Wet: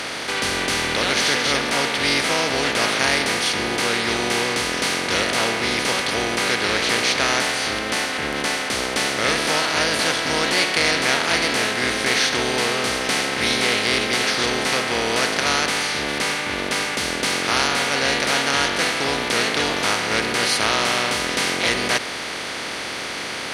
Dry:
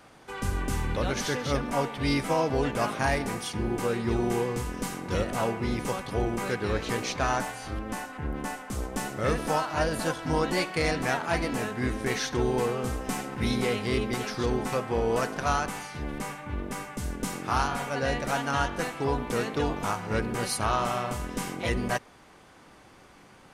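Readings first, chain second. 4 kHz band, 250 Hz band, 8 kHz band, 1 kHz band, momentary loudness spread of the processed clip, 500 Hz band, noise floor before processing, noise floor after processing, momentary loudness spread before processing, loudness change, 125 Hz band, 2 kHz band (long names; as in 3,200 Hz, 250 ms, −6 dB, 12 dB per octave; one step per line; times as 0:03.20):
+18.0 dB, +3.0 dB, +14.0 dB, +6.5 dB, 4 LU, +5.0 dB, −54 dBFS, −29 dBFS, 8 LU, +9.5 dB, −2.5 dB, +14.0 dB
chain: compressor on every frequency bin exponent 0.4
meter weighting curve D
level −2 dB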